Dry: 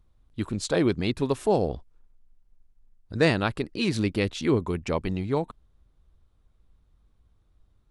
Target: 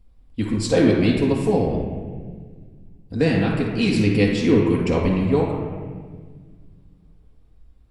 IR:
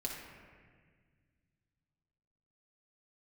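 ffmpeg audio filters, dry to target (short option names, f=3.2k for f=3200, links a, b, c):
-filter_complex "[0:a]asettb=1/sr,asplit=3[a][b][c];[a]atrim=end=1.154[d];[b]atrim=start=1.15:end=3.66,asetpts=PTS-STARTPTS,afade=t=in:d=0.004:c=qsin,afade=t=out:st=2.506:d=0.004:c=qsin,acrossover=split=280[e][f];[f]acompressor=threshold=-30dB:ratio=2[g];[e][g]amix=inputs=2:normalize=0[h];[c]atrim=start=3.656[i];[d][h]acrossfade=d=0.004:c1=hsin:c2=qsin[j];[j][i]acrossfade=d=0.004:c1=qsin:c2=hsin[k];[1:a]atrim=start_sample=2205,asetrate=48510,aresample=44100[l];[k][l]afir=irnorm=-1:irlink=0,volume=5.5dB"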